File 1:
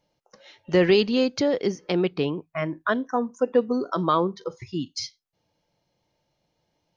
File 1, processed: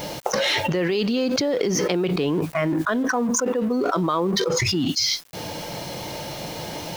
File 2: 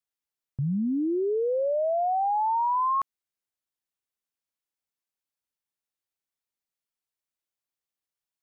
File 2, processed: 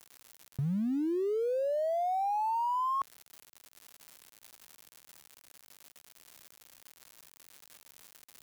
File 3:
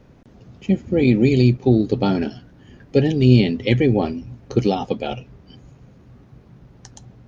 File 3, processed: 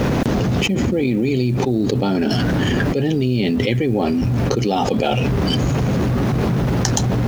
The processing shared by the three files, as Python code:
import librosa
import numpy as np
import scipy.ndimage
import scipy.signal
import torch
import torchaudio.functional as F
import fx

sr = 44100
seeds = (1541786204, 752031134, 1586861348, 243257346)

y = fx.law_mismatch(x, sr, coded='mu')
y = fx.low_shelf(y, sr, hz=72.0, db=-10.5)
y = fx.env_flatten(y, sr, amount_pct=100)
y = y * librosa.db_to_amplitude(-7.0)